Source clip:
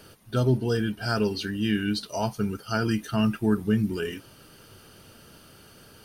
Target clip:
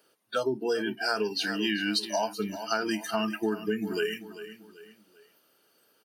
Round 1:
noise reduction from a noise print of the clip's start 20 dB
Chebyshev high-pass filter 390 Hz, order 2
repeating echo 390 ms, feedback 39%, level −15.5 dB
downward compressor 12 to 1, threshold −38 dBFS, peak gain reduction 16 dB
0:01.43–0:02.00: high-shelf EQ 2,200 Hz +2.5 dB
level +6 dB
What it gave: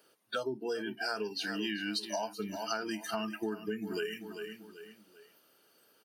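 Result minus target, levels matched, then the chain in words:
downward compressor: peak gain reduction +7.5 dB
noise reduction from a noise print of the clip's start 20 dB
Chebyshev high-pass filter 390 Hz, order 2
repeating echo 390 ms, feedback 39%, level −15.5 dB
downward compressor 12 to 1, threshold −30 dBFS, peak gain reduction 8.5 dB
0:01.43–0:02.00: high-shelf EQ 2,200 Hz +2.5 dB
level +6 dB

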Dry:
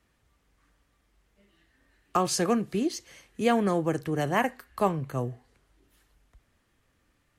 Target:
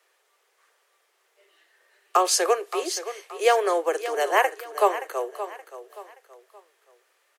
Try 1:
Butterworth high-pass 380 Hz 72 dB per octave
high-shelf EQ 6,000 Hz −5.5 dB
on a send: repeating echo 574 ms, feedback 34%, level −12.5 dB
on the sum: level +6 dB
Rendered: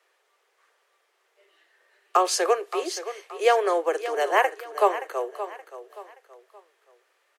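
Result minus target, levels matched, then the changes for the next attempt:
8,000 Hz band −4.0 dB
change: high-shelf EQ 6,000 Hz +2.5 dB

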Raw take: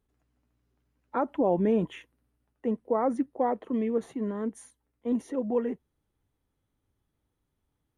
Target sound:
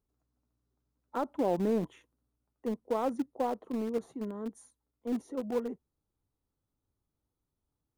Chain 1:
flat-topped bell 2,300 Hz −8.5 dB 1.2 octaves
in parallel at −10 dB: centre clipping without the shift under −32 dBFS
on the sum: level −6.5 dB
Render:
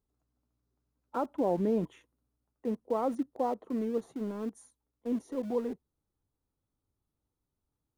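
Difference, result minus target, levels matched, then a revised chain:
centre clipping without the shift: distortion −12 dB
flat-topped bell 2,300 Hz −8.5 dB 1.2 octaves
in parallel at −10 dB: centre clipping without the shift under −23.5 dBFS
on the sum: level −6.5 dB

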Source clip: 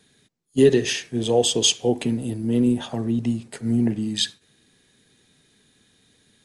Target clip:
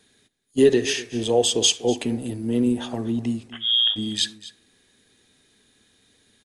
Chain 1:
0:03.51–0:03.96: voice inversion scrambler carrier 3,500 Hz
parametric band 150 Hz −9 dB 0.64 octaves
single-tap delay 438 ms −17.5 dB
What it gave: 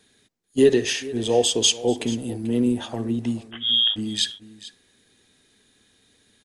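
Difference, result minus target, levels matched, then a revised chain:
echo 193 ms late
0:03.51–0:03.96: voice inversion scrambler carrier 3,500 Hz
parametric band 150 Hz −9 dB 0.64 octaves
single-tap delay 245 ms −17.5 dB

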